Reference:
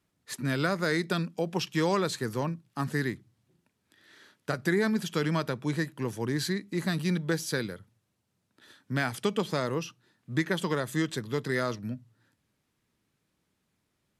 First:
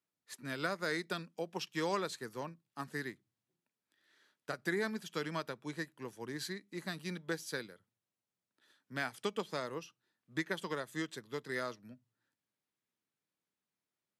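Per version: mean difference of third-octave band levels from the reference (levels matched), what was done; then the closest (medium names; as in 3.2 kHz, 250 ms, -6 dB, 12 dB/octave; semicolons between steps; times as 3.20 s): 3.0 dB: high-pass 94 Hz; bass shelf 220 Hz -11 dB; upward expansion 1.5:1, over -43 dBFS; trim -5 dB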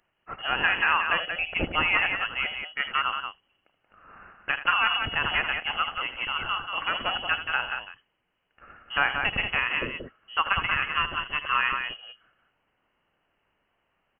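16.0 dB: tilt EQ +4.5 dB/octave; loudspeakers at several distances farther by 27 m -12 dB, 62 m -6 dB; frequency inversion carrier 3.1 kHz; trim +5 dB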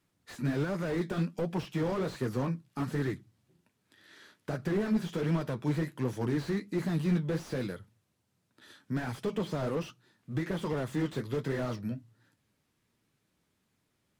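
4.5 dB: peak limiter -19 dBFS, peak gain reduction 5.5 dB; flange 1.3 Hz, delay 5.9 ms, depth 8.3 ms, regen -47%; slew-rate limiter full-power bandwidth 11 Hz; trim +4.5 dB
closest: first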